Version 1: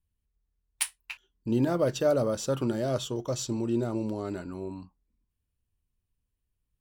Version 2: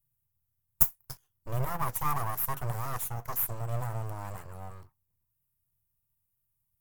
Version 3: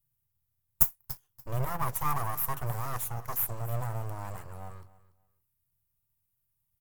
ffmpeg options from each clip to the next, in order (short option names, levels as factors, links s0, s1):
-af "aeval=exprs='abs(val(0))':c=same,crystalizer=i=2:c=0,equalizer=f=125:t=o:w=1:g=12,equalizer=f=250:t=o:w=1:g=-10,equalizer=f=500:t=o:w=1:g=-3,equalizer=f=1000:t=o:w=1:g=7,equalizer=f=4000:t=o:w=1:g=-9,equalizer=f=8000:t=o:w=1:g=-3,equalizer=f=16000:t=o:w=1:g=11,volume=0.501"
-af "aecho=1:1:288|576:0.119|0.025"